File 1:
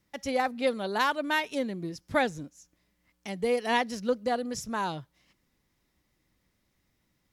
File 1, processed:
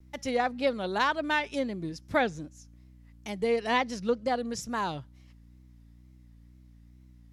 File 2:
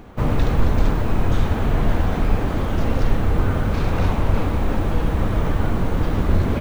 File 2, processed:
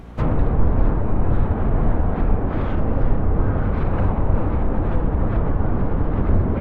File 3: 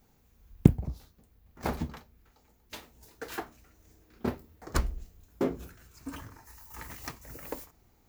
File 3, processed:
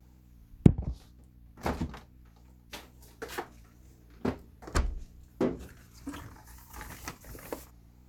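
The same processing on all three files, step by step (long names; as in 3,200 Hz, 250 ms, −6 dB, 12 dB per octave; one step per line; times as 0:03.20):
mains hum 60 Hz, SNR 22 dB
treble cut that deepens with the level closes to 1,200 Hz, closed at −14 dBFS
tape wow and flutter 87 cents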